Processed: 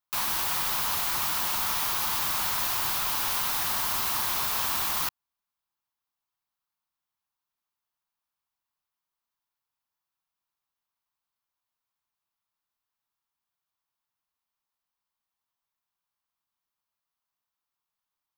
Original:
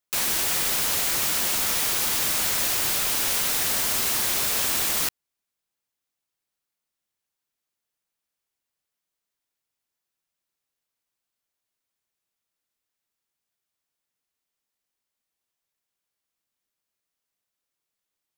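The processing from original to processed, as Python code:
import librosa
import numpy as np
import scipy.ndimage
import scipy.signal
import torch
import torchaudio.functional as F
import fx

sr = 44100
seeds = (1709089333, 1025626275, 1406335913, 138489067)

y = fx.graphic_eq(x, sr, hz=(250, 500, 1000, 2000, 8000), db=(-3, -9, 10, -4, -7))
y = F.gain(torch.from_numpy(y), -2.5).numpy()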